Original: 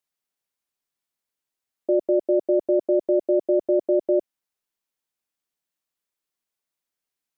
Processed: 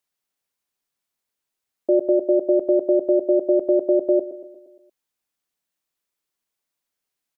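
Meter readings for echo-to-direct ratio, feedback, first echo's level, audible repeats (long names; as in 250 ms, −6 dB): −12.5 dB, 56%, −14.0 dB, 5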